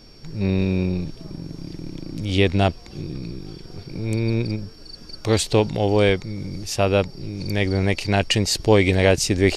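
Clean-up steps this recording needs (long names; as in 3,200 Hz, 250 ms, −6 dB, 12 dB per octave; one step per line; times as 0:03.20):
notch filter 5,500 Hz, Q 30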